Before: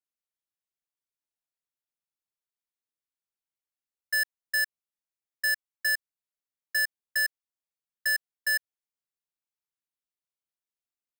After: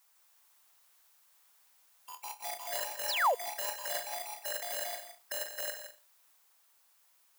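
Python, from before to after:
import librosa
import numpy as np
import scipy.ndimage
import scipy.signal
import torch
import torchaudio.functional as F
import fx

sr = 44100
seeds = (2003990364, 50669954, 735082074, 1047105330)

p1 = fx.spec_gate(x, sr, threshold_db=-20, keep='weak')
p2 = p1 + fx.room_flutter(p1, sr, wall_m=10.8, rt60_s=0.5, dry=0)
p3 = fx.stretch_grains(p2, sr, factor=0.66, grain_ms=38.0)
p4 = fx.dmg_noise_colour(p3, sr, seeds[0], colour='blue', level_db=-79.0)
p5 = fx.over_compress(p4, sr, threshold_db=-47.0, ratio=-0.5)
p6 = p4 + F.gain(torch.from_numpy(p5), 2.0).numpy()
p7 = fx.echo_pitch(p6, sr, ms=154, semitones=3, count=3, db_per_echo=-3.0)
p8 = p7 + 10.0 ** (-10.0 / 20.0) * np.pad(p7, (int(165 * sr / 1000.0), 0))[:len(p7)]
p9 = fx.spec_paint(p8, sr, seeds[1], shape='fall', start_s=3.08, length_s=0.27, low_hz=440.0, high_hz=6100.0, level_db=-36.0)
y = fx.peak_eq(p9, sr, hz=940.0, db=12.0, octaves=1.8)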